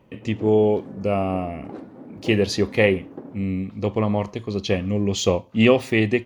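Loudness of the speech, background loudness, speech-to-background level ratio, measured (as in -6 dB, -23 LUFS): -22.0 LUFS, -40.5 LUFS, 18.5 dB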